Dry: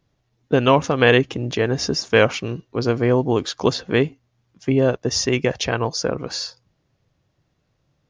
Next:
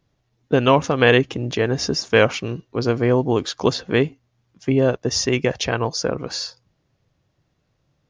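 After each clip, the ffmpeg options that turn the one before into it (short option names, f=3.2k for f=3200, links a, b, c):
-af anull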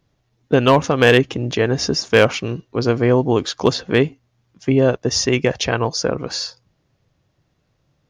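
-af "asoftclip=type=hard:threshold=-6.5dB,volume=2.5dB"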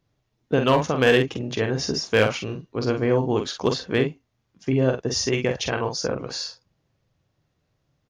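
-filter_complex "[0:a]asplit=2[a][b];[b]adelay=46,volume=-6dB[c];[a][c]amix=inputs=2:normalize=0,volume=-6.5dB"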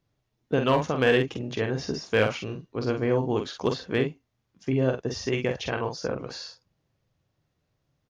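-filter_complex "[0:a]acrossover=split=3900[a][b];[b]acompressor=threshold=-39dB:ratio=4:attack=1:release=60[c];[a][c]amix=inputs=2:normalize=0,volume=-3.5dB"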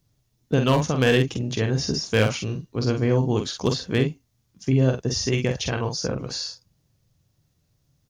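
-af "bass=f=250:g=9,treble=f=4k:g=14"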